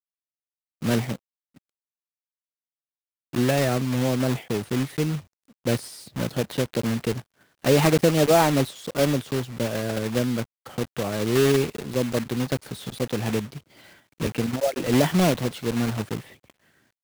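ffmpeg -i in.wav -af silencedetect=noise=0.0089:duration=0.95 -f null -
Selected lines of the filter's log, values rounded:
silence_start: 1.57
silence_end: 3.33 | silence_duration: 1.76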